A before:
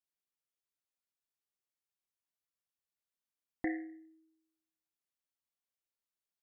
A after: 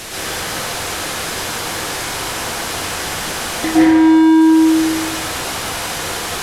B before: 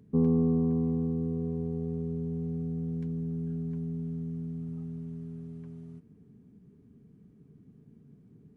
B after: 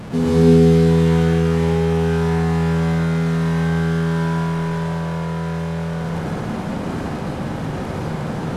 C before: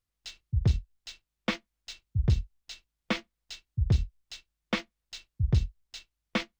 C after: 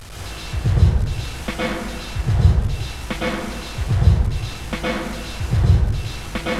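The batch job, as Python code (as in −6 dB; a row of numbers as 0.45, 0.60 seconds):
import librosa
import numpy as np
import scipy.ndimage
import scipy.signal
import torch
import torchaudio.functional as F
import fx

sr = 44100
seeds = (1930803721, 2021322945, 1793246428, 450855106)

y = fx.delta_mod(x, sr, bps=64000, step_db=-32.0)
y = fx.high_shelf(y, sr, hz=4900.0, db=-9.0)
y = fx.rev_plate(y, sr, seeds[0], rt60_s=1.4, hf_ratio=0.45, predelay_ms=100, drr_db=-7.5)
y = librosa.util.normalize(y) * 10.0 ** (-2 / 20.0)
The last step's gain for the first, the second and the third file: +13.5, +5.5, +2.5 decibels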